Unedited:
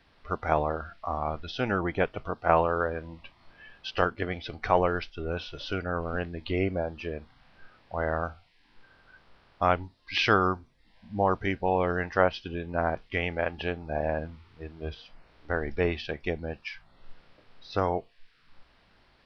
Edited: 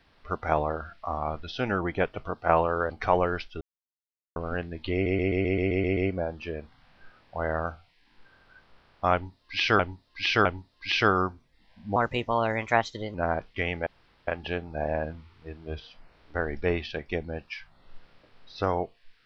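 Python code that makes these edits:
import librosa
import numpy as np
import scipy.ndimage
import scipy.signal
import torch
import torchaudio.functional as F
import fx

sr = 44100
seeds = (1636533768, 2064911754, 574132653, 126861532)

y = fx.edit(x, sr, fx.cut(start_s=2.9, length_s=1.62),
    fx.silence(start_s=5.23, length_s=0.75),
    fx.stutter(start_s=6.55, slice_s=0.13, count=9),
    fx.repeat(start_s=9.71, length_s=0.66, count=3),
    fx.speed_span(start_s=11.22, length_s=1.48, speed=1.25),
    fx.insert_room_tone(at_s=13.42, length_s=0.41), tone=tone)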